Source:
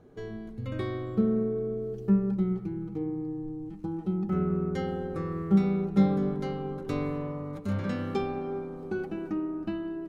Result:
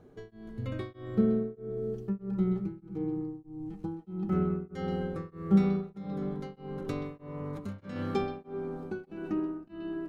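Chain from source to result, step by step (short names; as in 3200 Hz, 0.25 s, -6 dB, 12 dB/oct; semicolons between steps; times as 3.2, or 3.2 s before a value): 5.8–7.96 compressor 6:1, threshold -29 dBFS, peak gain reduction 12 dB; delay with a stepping band-pass 0.128 s, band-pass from 3400 Hz, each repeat -1.4 oct, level -6.5 dB; beating tremolo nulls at 1.6 Hz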